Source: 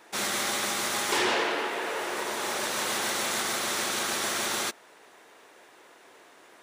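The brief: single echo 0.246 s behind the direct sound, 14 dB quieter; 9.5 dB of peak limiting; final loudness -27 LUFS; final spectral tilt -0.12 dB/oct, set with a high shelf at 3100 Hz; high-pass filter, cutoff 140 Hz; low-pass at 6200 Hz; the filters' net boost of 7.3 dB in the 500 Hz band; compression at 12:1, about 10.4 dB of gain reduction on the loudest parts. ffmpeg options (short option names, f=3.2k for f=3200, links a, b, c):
-af "highpass=140,lowpass=6.2k,equalizer=f=500:t=o:g=9,highshelf=f=3.1k:g=8.5,acompressor=threshold=-28dB:ratio=12,alimiter=level_in=2dB:limit=-24dB:level=0:latency=1,volume=-2dB,aecho=1:1:246:0.2,volume=7dB"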